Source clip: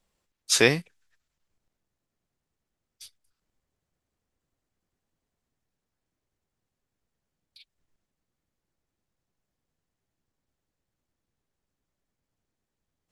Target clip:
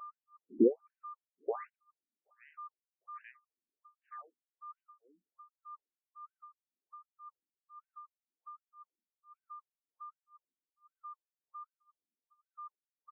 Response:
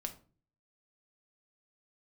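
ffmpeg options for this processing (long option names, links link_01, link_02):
-filter_complex "[0:a]afwtdn=0.01,acrusher=bits=2:mode=log:mix=0:aa=0.000001,aeval=exprs='val(0)+0.00501*sin(2*PI*1200*n/s)':channel_layout=same,asplit=2[link_01][link_02];[link_02]adelay=879,lowpass=frequency=3000:poles=1,volume=-12dB,asplit=2[link_03][link_04];[link_04]adelay=879,lowpass=frequency=3000:poles=1,volume=0.52,asplit=2[link_05][link_06];[link_06]adelay=879,lowpass=frequency=3000:poles=1,volume=0.52,asplit=2[link_07][link_08];[link_08]adelay=879,lowpass=frequency=3000:poles=1,volume=0.52,asplit=2[link_09][link_10];[link_10]adelay=879,lowpass=frequency=3000:poles=1,volume=0.52[link_11];[link_03][link_05][link_07][link_09][link_11]amix=inputs=5:normalize=0[link_12];[link_01][link_12]amix=inputs=2:normalize=0,tremolo=f=1.9:d=0.98,highshelf=frequency=2300:gain=-11,afftfilt=real='re*between(b*sr/1024,260*pow(2200/260,0.5+0.5*sin(2*PI*1.3*pts/sr))/1.41,260*pow(2200/260,0.5+0.5*sin(2*PI*1.3*pts/sr))*1.41)':imag='im*between(b*sr/1024,260*pow(2200/260,0.5+0.5*sin(2*PI*1.3*pts/sr))/1.41,260*pow(2200/260,0.5+0.5*sin(2*PI*1.3*pts/sr))*1.41)':win_size=1024:overlap=0.75,volume=6.5dB"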